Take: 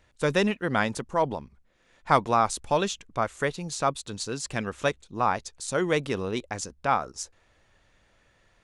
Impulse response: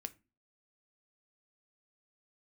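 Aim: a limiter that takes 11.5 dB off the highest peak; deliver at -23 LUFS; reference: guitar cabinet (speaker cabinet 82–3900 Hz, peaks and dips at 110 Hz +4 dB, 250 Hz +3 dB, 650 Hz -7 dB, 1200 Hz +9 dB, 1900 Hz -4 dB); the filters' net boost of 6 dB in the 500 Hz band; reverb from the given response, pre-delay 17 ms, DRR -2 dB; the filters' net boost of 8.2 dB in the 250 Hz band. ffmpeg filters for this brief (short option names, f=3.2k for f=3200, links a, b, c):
-filter_complex "[0:a]equalizer=f=250:t=o:g=7,equalizer=f=500:t=o:g=7.5,alimiter=limit=-14dB:level=0:latency=1,asplit=2[a][b];[1:a]atrim=start_sample=2205,adelay=17[c];[b][c]afir=irnorm=-1:irlink=0,volume=5.5dB[d];[a][d]amix=inputs=2:normalize=0,highpass=82,equalizer=f=110:t=q:w=4:g=4,equalizer=f=250:t=q:w=4:g=3,equalizer=f=650:t=q:w=4:g=-7,equalizer=f=1.2k:t=q:w=4:g=9,equalizer=f=1.9k:t=q:w=4:g=-4,lowpass=f=3.9k:w=0.5412,lowpass=f=3.9k:w=1.3066,volume=-0.5dB"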